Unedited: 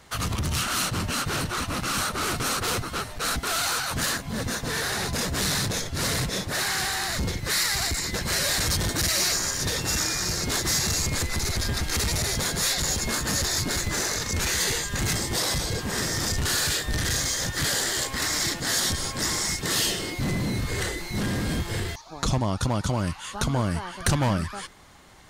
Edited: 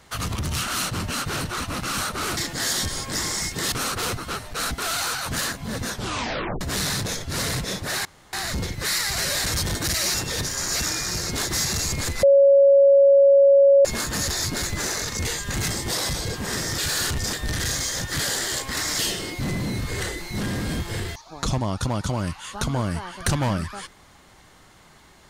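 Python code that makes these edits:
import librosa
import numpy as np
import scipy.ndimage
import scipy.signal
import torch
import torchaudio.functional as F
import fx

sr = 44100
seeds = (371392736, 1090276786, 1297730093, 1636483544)

y = fx.edit(x, sr, fx.tape_stop(start_s=4.55, length_s=0.71),
    fx.room_tone_fill(start_s=6.7, length_s=0.28),
    fx.cut(start_s=7.83, length_s=0.49),
    fx.reverse_span(start_s=9.28, length_s=0.66),
    fx.bleep(start_s=11.37, length_s=1.62, hz=556.0, db=-10.5),
    fx.cut(start_s=14.39, length_s=0.31),
    fx.reverse_span(start_s=16.23, length_s=0.55),
    fx.move(start_s=18.44, length_s=1.35, to_s=2.37), tone=tone)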